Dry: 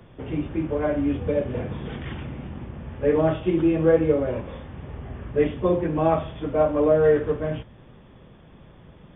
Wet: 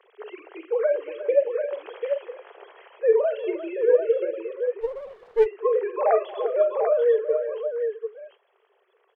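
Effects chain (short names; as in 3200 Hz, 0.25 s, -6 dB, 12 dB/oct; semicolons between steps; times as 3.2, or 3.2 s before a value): sine-wave speech; steep high-pass 390 Hz 96 dB/oct; vocal rider within 5 dB 0.5 s; tapped delay 46/231/353/742 ms -14.5/-19/-13.5/-6.5 dB; 4.81–5.46 running maximum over 9 samples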